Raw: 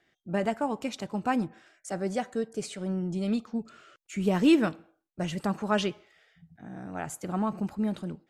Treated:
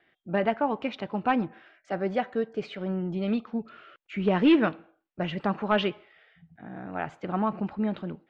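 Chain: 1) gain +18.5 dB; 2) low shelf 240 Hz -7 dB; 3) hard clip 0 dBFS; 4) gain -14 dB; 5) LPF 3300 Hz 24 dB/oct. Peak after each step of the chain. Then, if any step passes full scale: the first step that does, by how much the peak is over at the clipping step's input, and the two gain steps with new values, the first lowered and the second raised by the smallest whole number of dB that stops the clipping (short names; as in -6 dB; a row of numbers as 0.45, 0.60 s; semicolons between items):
+6.5, +6.0, 0.0, -14.0, -13.0 dBFS; step 1, 6.0 dB; step 1 +12.5 dB, step 4 -8 dB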